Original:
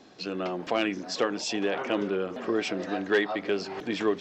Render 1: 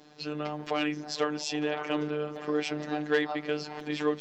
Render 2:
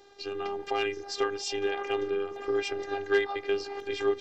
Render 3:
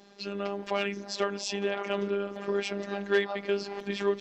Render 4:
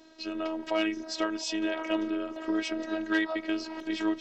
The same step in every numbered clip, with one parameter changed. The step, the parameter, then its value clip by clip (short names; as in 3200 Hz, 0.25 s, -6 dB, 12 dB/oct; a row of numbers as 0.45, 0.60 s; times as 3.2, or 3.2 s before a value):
robotiser, frequency: 150, 400, 200, 320 Hz